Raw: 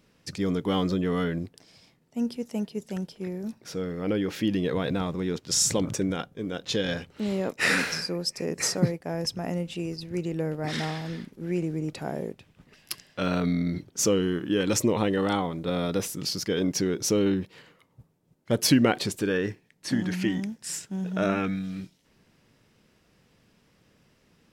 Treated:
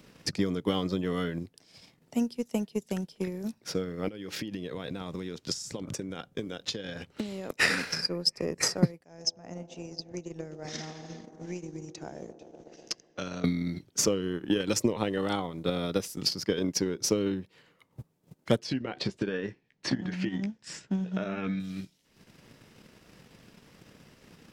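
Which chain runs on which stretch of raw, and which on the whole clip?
4.08–7.50 s: peaking EQ 6.2 kHz +3 dB 2.3 oct + compression 12:1, threshold -32 dBFS
9.04–13.44 s: four-pole ladder low-pass 6.6 kHz, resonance 80% + feedback echo behind a band-pass 124 ms, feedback 78%, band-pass 480 Hz, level -8 dB
18.59–21.60 s: compression 5:1, threshold -26 dBFS + distance through air 130 m + doubling 15 ms -8 dB
whole clip: dynamic bell 4.9 kHz, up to +6 dB, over -48 dBFS, Q 4; transient shaper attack +9 dB, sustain -7 dB; three bands compressed up and down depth 40%; trim -4.5 dB

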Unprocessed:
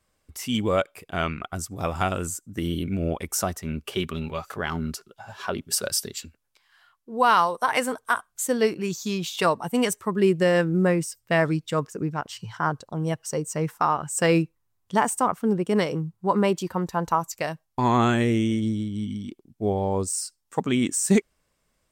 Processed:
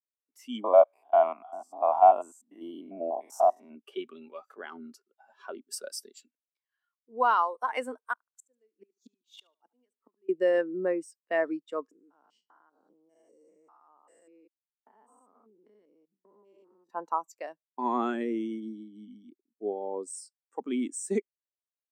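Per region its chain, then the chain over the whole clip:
0.64–3.75 s: spectrogram pixelated in time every 100 ms + high-order bell 820 Hz +15.5 dB 1 oct
8.13–10.29 s: inverted gate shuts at -20 dBFS, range -30 dB + feedback delay 73 ms, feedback 33%, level -16 dB
11.91–16.90 s: spectrogram pixelated in time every 200 ms + gate with hold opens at -31 dBFS, closes at -34 dBFS + compression 16:1, threshold -38 dBFS
whole clip: steep high-pass 240 Hz 36 dB/octave; spectral contrast expander 1.5:1; trim -3 dB

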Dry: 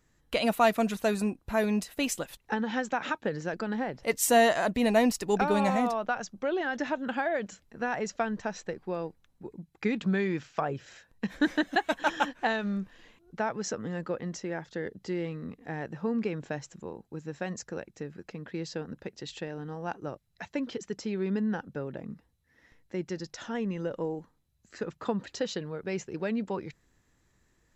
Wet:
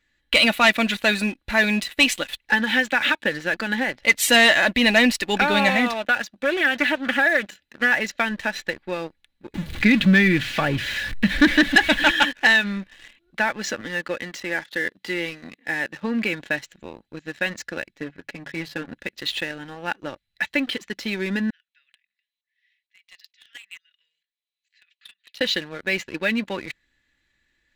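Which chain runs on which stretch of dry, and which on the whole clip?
5.93–7.92 s: short-mantissa float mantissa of 8-bit + comb of notches 1.1 kHz + loudspeaker Doppler distortion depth 0.21 ms
9.54–12.11 s: jump at every zero crossing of -40 dBFS + tone controls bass +13 dB, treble -2 dB
13.81–16.02 s: high-pass 110 Hz + bass shelf 170 Hz -7 dB
17.94–18.91 s: treble shelf 2.8 kHz -11 dB + hum notches 50/100/150 Hz + comb 7.1 ms
21.50–25.41 s: inverse Chebyshev high-pass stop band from 880 Hz, stop band 50 dB + tremolo saw up 2.2 Hz, depth 85% + treble shelf 5.1 kHz -12 dB
whole clip: high-order bell 2.6 kHz +14 dB; comb 3.5 ms, depth 43%; waveshaping leveller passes 2; trim -3.5 dB

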